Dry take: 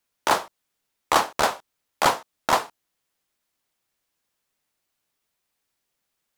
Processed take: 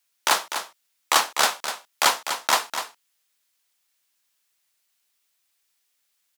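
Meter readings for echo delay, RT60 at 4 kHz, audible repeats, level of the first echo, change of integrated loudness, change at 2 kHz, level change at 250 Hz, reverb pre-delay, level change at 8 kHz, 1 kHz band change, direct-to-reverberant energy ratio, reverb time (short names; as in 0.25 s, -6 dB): 0.248 s, none, 1, -9.0 dB, +0.5 dB, +3.0 dB, -7.5 dB, none, +7.0 dB, -1.5 dB, none, none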